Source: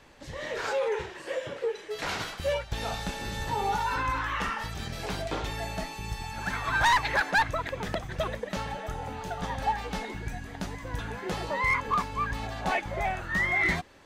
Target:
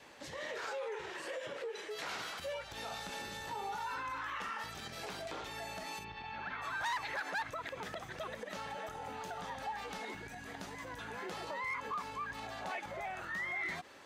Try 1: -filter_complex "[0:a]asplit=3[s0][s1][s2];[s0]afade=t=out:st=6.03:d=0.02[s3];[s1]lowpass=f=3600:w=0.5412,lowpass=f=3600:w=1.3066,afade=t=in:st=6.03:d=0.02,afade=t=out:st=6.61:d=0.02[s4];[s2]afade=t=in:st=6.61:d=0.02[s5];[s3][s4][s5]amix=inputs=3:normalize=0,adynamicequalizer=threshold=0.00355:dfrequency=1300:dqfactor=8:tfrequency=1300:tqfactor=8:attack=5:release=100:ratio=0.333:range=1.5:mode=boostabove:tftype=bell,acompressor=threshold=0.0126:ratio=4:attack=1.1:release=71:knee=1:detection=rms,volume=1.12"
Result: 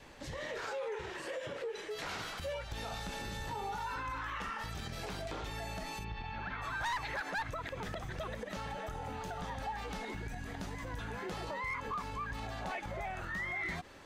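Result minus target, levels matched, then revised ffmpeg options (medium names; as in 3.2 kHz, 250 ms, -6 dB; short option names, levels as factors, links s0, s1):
250 Hz band +4.0 dB
-filter_complex "[0:a]asplit=3[s0][s1][s2];[s0]afade=t=out:st=6.03:d=0.02[s3];[s1]lowpass=f=3600:w=0.5412,lowpass=f=3600:w=1.3066,afade=t=in:st=6.03:d=0.02,afade=t=out:st=6.61:d=0.02[s4];[s2]afade=t=in:st=6.61:d=0.02[s5];[s3][s4][s5]amix=inputs=3:normalize=0,adynamicequalizer=threshold=0.00355:dfrequency=1300:dqfactor=8:tfrequency=1300:tqfactor=8:attack=5:release=100:ratio=0.333:range=1.5:mode=boostabove:tftype=bell,acompressor=threshold=0.0126:ratio=4:attack=1.1:release=71:knee=1:detection=rms,highpass=f=350:p=1,volume=1.12"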